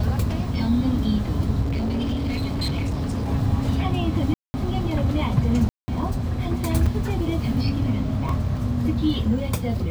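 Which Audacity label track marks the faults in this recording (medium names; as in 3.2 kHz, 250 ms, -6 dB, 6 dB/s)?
1.620000	3.300000	clipped -21 dBFS
4.340000	4.540000	dropout 200 ms
5.690000	5.880000	dropout 190 ms
6.860000	6.860000	dropout 4.8 ms
8.290000	8.290000	dropout 2.7 ms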